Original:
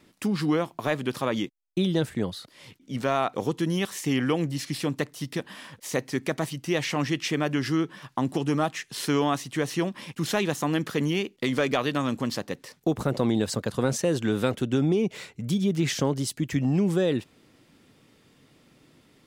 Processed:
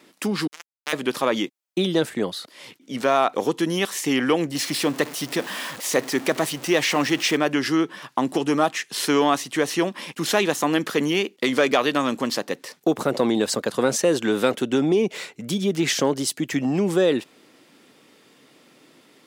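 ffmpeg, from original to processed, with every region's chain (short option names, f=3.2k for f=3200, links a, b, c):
-filter_complex "[0:a]asettb=1/sr,asplit=3[a][b][c];[a]atrim=end=0.474[d];[b]atrim=start=0.47:end=0.93,asetpts=PTS-STARTPTS,afade=t=in:d=0.004:c=qsin,afade=t=out:st=0.456:d=0.004:c=qsin,highpass=1.5k,acrusher=bits=3:mix=0:aa=0.5[e];[c]atrim=start=0.926[f];[d][e]acrossfade=d=0.004:c1=hsin:c2=qsin[g];[g][f]acrossfade=d=0.004:c1=qsin:c2=hsin,asettb=1/sr,asplit=3[h][i][j];[h]atrim=end=4.554[k];[i]atrim=start=4.55:end=7.37,asetpts=PTS-STARTPTS,afade=t=in:d=0.004:c=qsin,afade=t=out:st=2.816:d=0.004:c=qsin,aeval=exprs='val(0)+0.5*0.015*sgn(val(0))':c=same,highpass=48[l];[j]atrim=start=7.366[m];[k][l]acrossfade=d=0.004:c1=hsin:c2=qsin[n];[n][m]acrossfade=d=0.004:c1=qsin:c2=hsin,acontrast=77,highpass=280"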